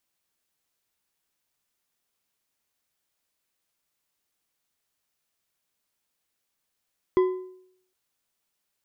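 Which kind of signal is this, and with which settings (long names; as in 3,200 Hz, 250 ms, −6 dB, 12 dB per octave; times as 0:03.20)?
struck metal bar, length 0.76 s, lowest mode 370 Hz, decay 0.69 s, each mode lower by 11.5 dB, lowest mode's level −14.5 dB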